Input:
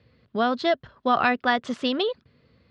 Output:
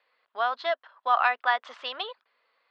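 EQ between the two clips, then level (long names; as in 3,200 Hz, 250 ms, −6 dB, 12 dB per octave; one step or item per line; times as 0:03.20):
four-pole ladder high-pass 700 Hz, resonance 35%
low-pass filter 3,800 Hz 12 dB per octave
+4.5 dB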